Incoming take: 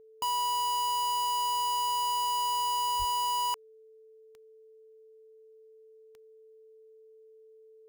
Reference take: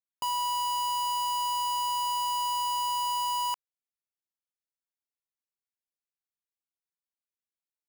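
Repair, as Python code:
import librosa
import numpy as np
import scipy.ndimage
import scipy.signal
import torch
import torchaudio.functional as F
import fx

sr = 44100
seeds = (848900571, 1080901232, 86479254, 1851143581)

y = fx.fix_declick_ar(x, sr, threshold=10.0)
y = fx.notch(y, sr, hz=440.0, q=30.0)
y = fx.fix_deplosive(y, sr, at_s=(2.98,))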